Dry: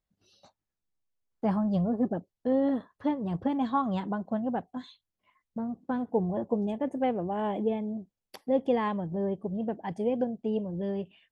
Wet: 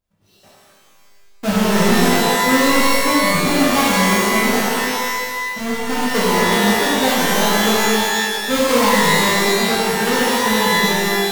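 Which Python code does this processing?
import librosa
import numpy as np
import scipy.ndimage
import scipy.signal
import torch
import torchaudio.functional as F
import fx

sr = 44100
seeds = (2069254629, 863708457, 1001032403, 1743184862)

y = fx.halfwave_hold(x, sr)
y = fx.rev_shimmer(y, sr, seeds[0], rt60_s=1.7, semitones=12, shimmer_db=-2, drr_db=-8.0)
y = y * 10.0 ** (-1.0 / 20.0)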